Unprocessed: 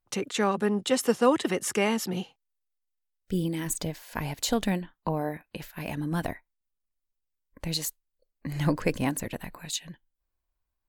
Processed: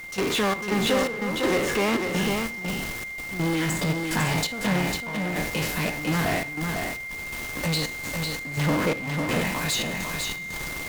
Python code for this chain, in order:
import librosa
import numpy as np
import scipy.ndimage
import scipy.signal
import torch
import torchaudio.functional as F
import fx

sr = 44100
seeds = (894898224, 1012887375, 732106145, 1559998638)

p1 = fx.spec_trails(x, sr, decay_s=0.52)
p2 = scipy.signal.sosfilt(scipy.signal.butter(2, 110.0, 'highpass', fs=sr, output='sos'), p1)
p3 = fx.high_shelf(p2, sr, hz=9300.0, db=9.0)
p4 = fx.env_lowpass_down(p3, sr, base_hz=2300.0, full_db=-23.0)
p5 = fx.dmg_noise_colour(p4, sr, seeds[0], colour='pink', level_db=-49.0)
p6 = fx.fuzz(p5, sr, gain_db=44.0, gate_db=-49.0)
p7 = p5 + (p6 * librosa.db_to_amplitude(-4.5))
p8 = fx.step_gate(p7, sr, bpm=84, pattern='.xx.xx..xxx', floor_db=-12.0, edge_ms=4.5)
p9 = p8 + 10.0 ** (-29.0 / 20.0) * np.sin(2.0 * np.pi * 2100.0 * np.arange(len(p8)) / sr)
p10 = p9 + 10.0 ** (-5.0 / 20.0) * np.pad(p9, (int(500 * sr / 1000.0), 0))[:len(p9)]
y = p10 * librosa.db_to_amplitude(-7.5)